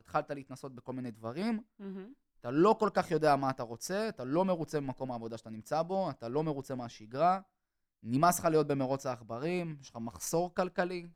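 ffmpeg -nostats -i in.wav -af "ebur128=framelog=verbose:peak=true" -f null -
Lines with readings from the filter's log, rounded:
Integrated loudness:
  I:         -33.1 LUFS
  Threshold: -43.6 LUFS
Loudness range:
  LRA:         3.7 LU
  Threshold: -53.2 LUFS
  LRA low:   -35.4 LUFS
  LRA high:  -31.8 LUFS
True peak:
  Peak:      -14.8 dBFS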